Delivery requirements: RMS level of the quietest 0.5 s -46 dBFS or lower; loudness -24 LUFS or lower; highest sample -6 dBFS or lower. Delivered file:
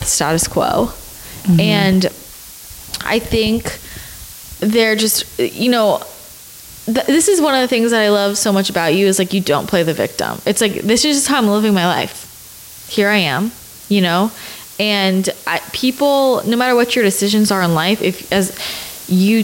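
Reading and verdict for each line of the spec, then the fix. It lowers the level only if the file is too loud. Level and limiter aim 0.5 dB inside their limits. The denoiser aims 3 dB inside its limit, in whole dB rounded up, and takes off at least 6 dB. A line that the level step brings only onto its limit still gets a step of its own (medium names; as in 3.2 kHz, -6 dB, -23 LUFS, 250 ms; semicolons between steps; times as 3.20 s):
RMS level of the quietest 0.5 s -37 dBFS: fail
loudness -15.0 LUFS: fail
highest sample -4.0 dBFS: fail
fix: trim -9.5 dB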